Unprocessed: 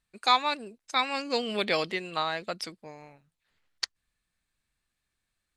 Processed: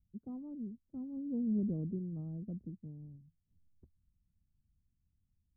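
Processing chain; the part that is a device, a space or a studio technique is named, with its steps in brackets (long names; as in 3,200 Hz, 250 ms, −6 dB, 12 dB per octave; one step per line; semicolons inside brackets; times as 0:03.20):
the neighbour's flat through the wall (low-pass filter 230 Hz 24 dB per octave; parametric band 82 Hz +7 dB 0.9 octaves)
level +6.5 dB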